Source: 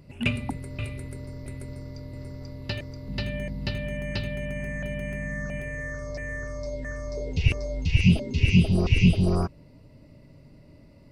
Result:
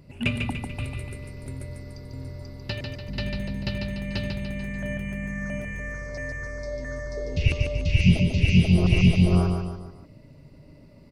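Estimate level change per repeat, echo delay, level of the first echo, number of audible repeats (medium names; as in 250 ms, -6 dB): -6.5 dB, 146 ms, -5.0 dB, 4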